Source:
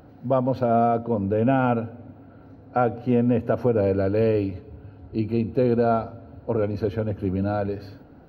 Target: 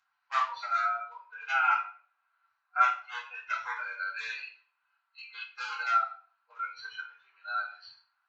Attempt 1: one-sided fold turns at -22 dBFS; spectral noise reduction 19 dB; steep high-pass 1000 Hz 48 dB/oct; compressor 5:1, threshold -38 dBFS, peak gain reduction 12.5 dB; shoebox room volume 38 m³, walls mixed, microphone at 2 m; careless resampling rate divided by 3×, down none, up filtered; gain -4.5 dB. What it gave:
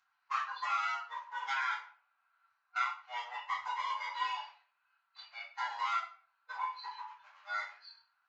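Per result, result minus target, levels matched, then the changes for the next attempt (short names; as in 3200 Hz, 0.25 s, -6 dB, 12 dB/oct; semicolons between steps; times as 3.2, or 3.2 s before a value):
one-sided fold: distortion +20 dB; compressor: peak gain reduction +12.5 dB
change: one-sided fold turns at -13.5 dBFS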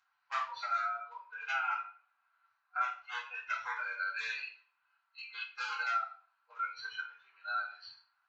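compressor: peak gain reduction +11 dB
remove: compressor 5:1, threshold -38 dBFS, peak gain reduction 11 dB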